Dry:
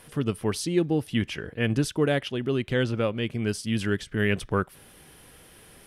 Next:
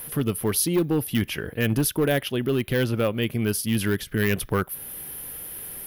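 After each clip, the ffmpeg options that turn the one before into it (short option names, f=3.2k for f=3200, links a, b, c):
-filter_complex "[0:a]asplit=2[a][b];[b]alimiter=limit=-22.5dB:level=0:latency=1:release=369,volume=-2dB[c];[a][c]amix=inputs=2:normalize=0,asoftclip=type=hard:threshold=-16dB,aexciter=amount=13.1:drive=5.6:freq=11k"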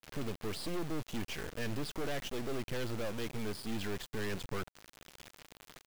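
-af "aresample=11025,asoftclip=type=tanh:threshold=-26.5dB,aresample=44100,acrusher=bits=4:dc=4:mix=0:aa=0.000001,volume=-3.5dB"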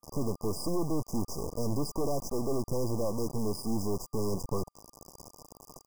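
-af "afftfilt=real='re*(1-between(b*sr/4096,1200,4800))':imag='im*(1-between(b*sr/4096,1200,4800))':win_size=4096:overlap=0.75,volume=7dB"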